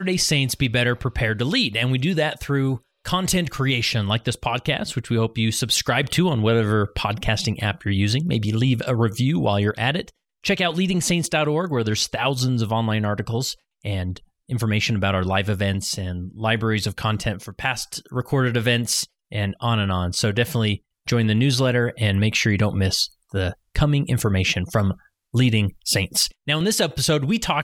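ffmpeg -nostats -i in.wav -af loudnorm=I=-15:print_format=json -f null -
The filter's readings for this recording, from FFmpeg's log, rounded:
"input_i" : "-21.7",
"input_tp" : "-7.2",
"input_lra" : "2.6",
"input_thresh" : "-31.8",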